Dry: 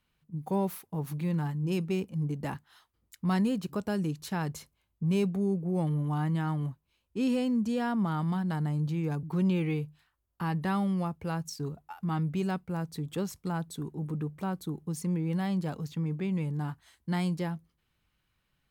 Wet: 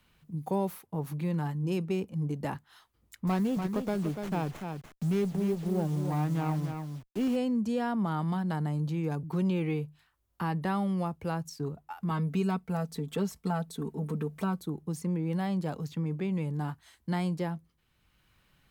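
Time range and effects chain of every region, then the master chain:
0:03.27–0:07.36: hold until the input has moved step −44 dBFS + single-tap delay 291 ms −8 dB + windowed peak hold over 9 samples
0:12.10–0:14.61: comb filter 4.5 ms, depth 76% + one half of a high-frequency compander encoder only
whole clip: dynamic equaliser 600 Hz, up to +4 dB, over −41 dBFS, Q 0.75; multiband upward and downward compressor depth 40%; level −2 dB

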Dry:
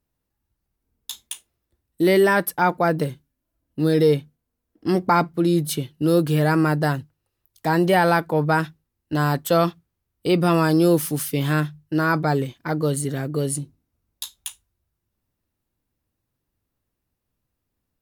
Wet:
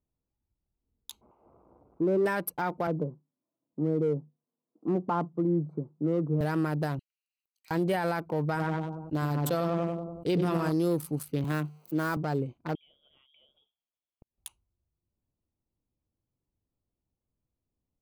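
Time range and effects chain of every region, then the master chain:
0:01.21–0:02.26: spike at every zero crossing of −15 dBFS + low-pass filter 1,100 Hz 24 dB per octave + one half of a high-frequency compander decoder only
0:02.87–0:06.41: elliptic band-pass filter 150–1,200 Hz + one half of a high-frequency compander encoder only
0:06.99–0:07.71: Butterworth high-pass 1,900 Hz + high-shelf EQ 4,200 Hz +7 dB + upward compression, threshold −54 dBFS
0:08.46–0:10.72: feedback echo with a low-pass in the loop 95 ms, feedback 41%, low-pass 2,200 Hz, level −5 dB + level that may fall only so fast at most 40 dB per second
0:11.44–0:12.17: spike at every zero crossing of −24 dBFS + high-pass filter 140 Hz 24 dB per octave
0:12.75–0:14.38: downward compressor 12 to 1, threshold −35 dBFS + gate with flip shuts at −26 dBFS, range −41 dB + voice inversion scrambler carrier 3,500 Hz
whole clip: adaptive Wiener filter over 25 samples; brickwall limiter −13.5 dBFS; level −6 dB

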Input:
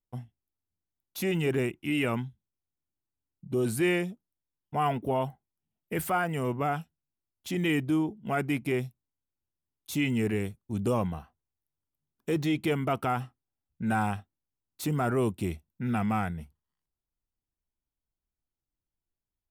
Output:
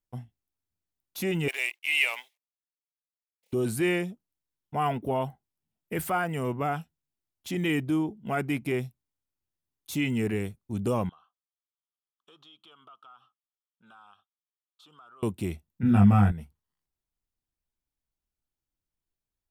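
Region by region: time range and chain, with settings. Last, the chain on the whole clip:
0:01.48–0:03.53: mu-law and A-law mismatch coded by A + high-pass filter 680 Hz 24 dB per octave + high shelf with overshoot 1,800 Hz +6.5 dB, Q 3
0:11.09–0:15.23: pair of resonant band-passes 2,000 Hz, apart 1.4 octaves + downward compressor 3 to 1, threshold −54 dBFS
0:15.83–0:16.32: bass and treble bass +11 dB, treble −3 dB + notch filter 2,100 Hz, Q 6 + double-tracking delay 20 ms −2.5 dB
whole clip: no processing

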